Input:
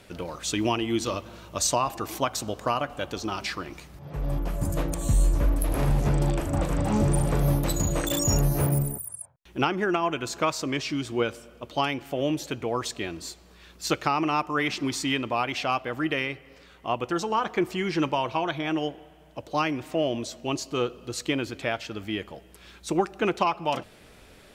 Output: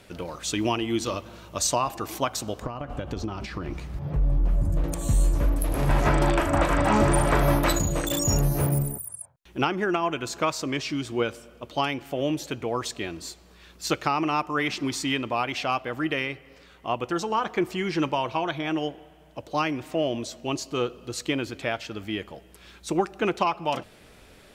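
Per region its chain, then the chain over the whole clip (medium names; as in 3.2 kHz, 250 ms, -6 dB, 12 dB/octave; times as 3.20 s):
2.62–4.84 s: compression 10:1, threshold -32 dBFS + tilt EQ -3.5 dB/octave + tape noise reduction on one side only encoder only
5.89–7.79 s: peaking EQ 1.5 kHz +13 dB 2.6 oct + comb 3.1 ms, depth 31%
whole clip: none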